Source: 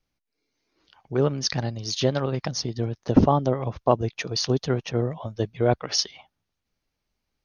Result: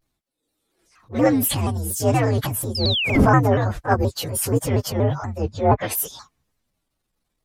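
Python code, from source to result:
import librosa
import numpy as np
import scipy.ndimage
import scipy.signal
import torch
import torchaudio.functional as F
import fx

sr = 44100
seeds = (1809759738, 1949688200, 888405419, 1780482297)

y = fx.partial_stretch(x, sr, pct=125)
y = fx.comb(y, sr, ms=3.6, depth=0.95, at=(1.14, 1.55))
y = fx.spec_paint(y, sr, seeds[0], shape='fall', start_s=2.75, length_s=0.43, low_hz=1900.0, high_hz=5400.0, level_db=-32.0)
y = fx.env_lowpass_down(y, sr, base_hz=1200.0, full_db=-17.5, at=(5.18, 5.8), fade=0.02)
y = fx.transient(y, sr, attack_db=-9, sustain_db=4)
y = fx.vibrato_shape(y, sr, shape='saw_down', rate_hz=4.2, depth_cents=160.0)
y = y * librosa.db_to_amplitude(8.5)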